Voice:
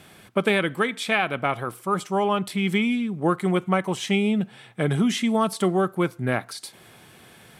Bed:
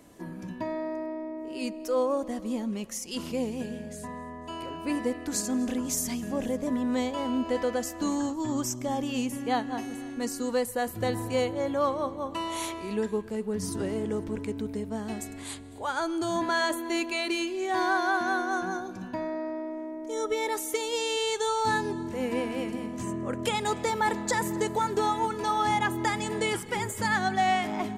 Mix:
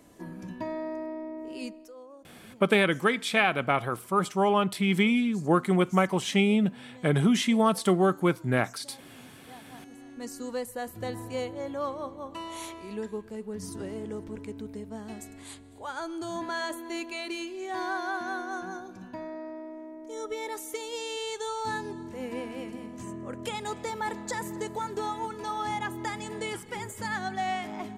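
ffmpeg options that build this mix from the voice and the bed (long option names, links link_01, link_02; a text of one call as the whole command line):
ffmpeg -i stem1.wav -i stem2.wav -filter_complex "[0:a]adelay=2250,volume=-1dB[link_01];[1:a]volume=14.5dB,afade=type=out:start_time=1.5:duration=0.43:silence=0.0944061,afade=type=in:start_time=9.55:duration=0.83:silence=0.158489[link_02];[link_01][link_02]amix=inputs=2:normalize=0" out.wav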